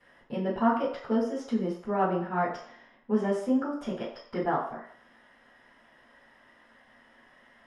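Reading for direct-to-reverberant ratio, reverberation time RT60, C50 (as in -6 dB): -14.0 dB, 0.60 s, 4.5 dB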